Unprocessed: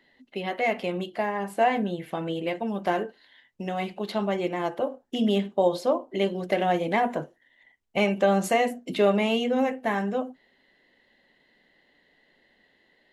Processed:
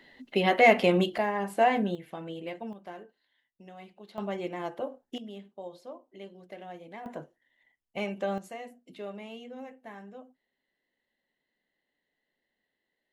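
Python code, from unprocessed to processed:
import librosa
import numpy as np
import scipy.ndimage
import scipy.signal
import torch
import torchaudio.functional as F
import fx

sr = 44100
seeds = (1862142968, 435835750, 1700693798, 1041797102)

y = fx.gain(x, sr, db=fx.steps((0.0, 6.5), (1.18, -1.0), (1.95, -9.0), (2.73, -18.0), (4.18, -7.0), (5.18, -20.0), (7.06, -10.0), (8.38, -19.0)))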